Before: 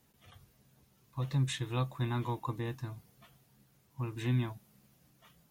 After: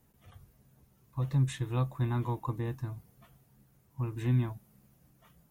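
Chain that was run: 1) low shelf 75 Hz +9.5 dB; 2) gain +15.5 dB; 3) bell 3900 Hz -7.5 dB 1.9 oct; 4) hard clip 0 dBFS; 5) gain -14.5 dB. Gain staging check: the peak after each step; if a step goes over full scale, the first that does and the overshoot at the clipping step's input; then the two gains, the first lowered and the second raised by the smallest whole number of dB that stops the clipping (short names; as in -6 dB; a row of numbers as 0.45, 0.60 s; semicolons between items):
-19.0, -3.5, -4.0, -4.0, -18.5 dBFS; no overload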